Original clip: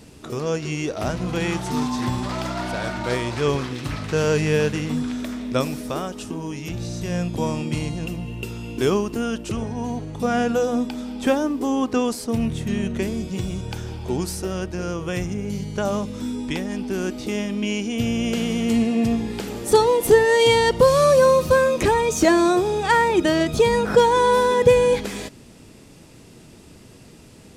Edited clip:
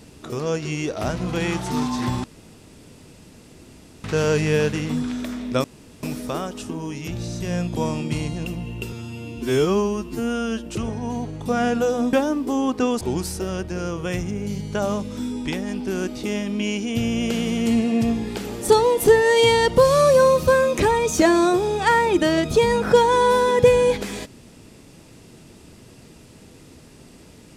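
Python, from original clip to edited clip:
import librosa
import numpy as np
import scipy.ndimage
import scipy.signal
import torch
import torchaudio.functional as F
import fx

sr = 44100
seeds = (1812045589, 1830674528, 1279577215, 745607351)

y = fx.edit(x, sr, fx.room_tone_fill(start_s=2.24, length_s=1.8),
    fx.insert_room_tone(at_s=5.64, length_s=0.39),
    fx.stretch_span(start_s=8.53, length_s=0.87, factor=2.0),
    fx.cut(start_s=10.87, length_s=0.4),
    fx.cut(start_s=12.15, length_s=1.89), tone=tone)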